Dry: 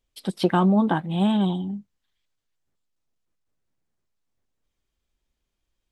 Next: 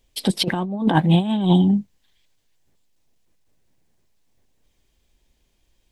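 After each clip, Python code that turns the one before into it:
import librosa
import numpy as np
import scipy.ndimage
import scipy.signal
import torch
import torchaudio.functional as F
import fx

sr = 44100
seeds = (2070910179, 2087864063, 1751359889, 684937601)

y = fx.peak_eq(x, sr, hz=1300.0, db=-8.0, octaves=0.45)
y = fx.over_compress(y, sr, threshold_db=-25.0, ratio=-0.5)
y = y * librosa.db_to_amplitude(8.5)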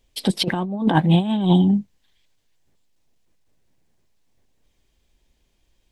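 y = fx.high_shelf(x, sr, hz=8600.0, db=-4.0)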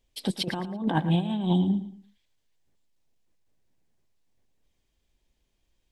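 y = fx.echo_feedback(x, sr, ms=112, feedback_pct=30, wet_db=-13)
y = y * librosa.db_to_amplitude(-8.0)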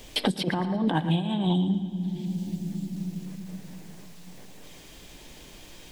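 y = fx.room_shoebox(x, sr, seeds[0], volume_m3=3500.0, walls='mixed', distance_m=0.45)
y = fx.band_squash(y, sr, depth_pct=100)
y = y * librosa.db_to_amplitude(1.0)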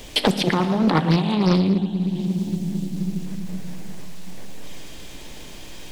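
y = fx.rev_schroeder(x, sr, rt60_s=2.5, comb_ms=27, drr_db=11.0)
y = fx.doppler_dist(y, sr, depth_ms=0.62)
y = y * librosa.db_to_amplitude(7.0)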